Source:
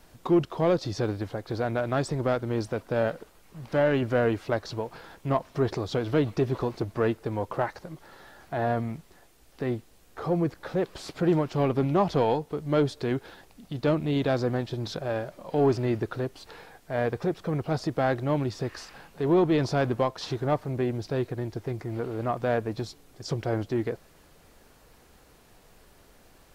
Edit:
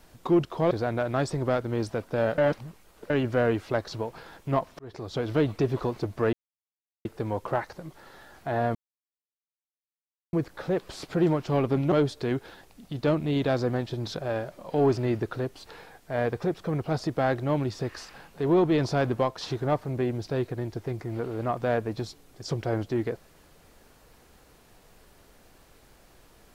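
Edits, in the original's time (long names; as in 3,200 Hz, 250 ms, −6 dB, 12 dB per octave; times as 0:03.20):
0:00.71–0:01.49: remove
0:03.16–0:03.88: reverse
0:05.57–0:06.07: fade in
0:07.11: splice in silence 0.72 s
0:08.81–0:10.39: silence
0:11.98–0:12.72: remove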